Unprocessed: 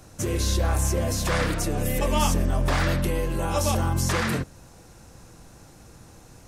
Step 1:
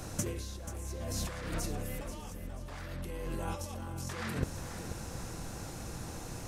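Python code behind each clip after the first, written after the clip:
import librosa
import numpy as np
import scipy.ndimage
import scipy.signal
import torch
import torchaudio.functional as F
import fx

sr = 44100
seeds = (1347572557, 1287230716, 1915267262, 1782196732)

y = fx.over_compress(x, sr, threshold_db=-31.0, ratio=-0.5)
y = fx.echo_feedback(y, sr, ms=485, feedback_pct=36, wet_db=-11)
y = y * 10.0 ** (-4.0 / 20.0)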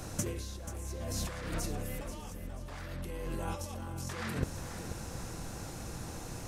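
y = x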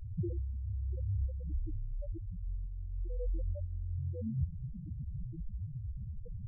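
y = fx.echo_diffused(x, sr, ms=479, feedback_pct=41, wet_db=-10.5)
y = fx.spec_topn(y, sr, count=2)
y = y * 10.0 ** (7.5 / 20.0)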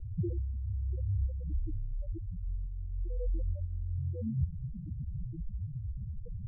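y = scipy.signal.sosfilt(scipy.signal.butter(8, 520.0, 'lowpass', fs=sr, output='sos'), x)
y = y * 10.0 ** (2.5 / 20.0)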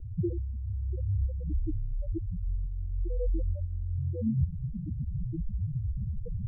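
y = fx.peak_eq(x, sr, hz=300.0, db=6.5, octaves=1.5)
y = fx.rider(y, sr, range_db=3, speed_s=2.0)
y = y * 10.0 ** (2.5 / 20.0)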